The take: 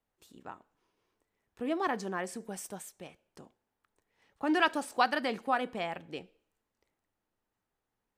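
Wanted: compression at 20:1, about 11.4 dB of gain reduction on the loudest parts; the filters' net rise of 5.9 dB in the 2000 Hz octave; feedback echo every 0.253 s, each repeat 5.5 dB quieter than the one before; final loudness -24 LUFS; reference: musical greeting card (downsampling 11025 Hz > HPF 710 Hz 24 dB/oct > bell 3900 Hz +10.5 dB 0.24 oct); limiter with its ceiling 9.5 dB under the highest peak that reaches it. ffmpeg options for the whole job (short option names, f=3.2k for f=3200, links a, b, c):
-af "equalizer=f=2k:t=o:g=7.5,acompressor=threshold=-28dB:ratio=20,alimiter=level_in=3dB:limit=-24dB:level=0:latency=1,volume=-3dB,aecho=1:1:253|506|759|1012|1265|1518|1771:0.531|0.281|0.149|0.079|0.0419|0.0222|0.0118,aresample=11025,aresample=44100,highpass=f=710:w=0.5412,highpass=f=710:w=1.3066,equalizer=f=3.9k:t=o:w=0.24:g=10.5,volume=17.5dB"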